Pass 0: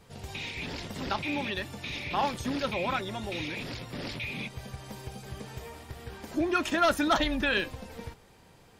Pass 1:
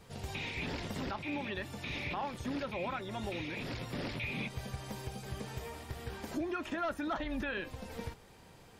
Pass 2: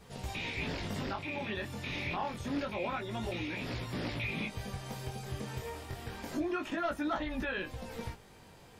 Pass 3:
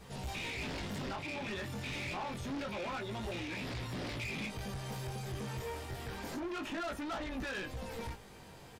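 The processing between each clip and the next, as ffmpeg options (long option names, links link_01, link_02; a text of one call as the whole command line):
ffmpeg -i in.wav -filter_complex "[0:a]acrossover=split=2600[link_01][link_02];[link_02]acompressor=threshold=-46dB:ratio=4:attack=1:release=60[link_03];[link_01][link_03]amix=inputs=2:normalize=0,alimiter=level_in=4dB:limit=-24dB:level=0:latency=1:release=389,volume=-4dB" out.wav
ffmpeg -i in.wav -af "flanger=delay=16:depth=7.7:speed=0.27,volume=4.5dB" out.wav
ffmpeg -i in.wav -filter_complex "[0:a]asoftclip=type=tanh:threshold=-39dB,asplit=2[link_01][link_02];[link_02]adelay=15,volume=-12dB[link_03];[link_01][link_03]amix=inputs=2:normalize=0,volume=2.5dB" out.wav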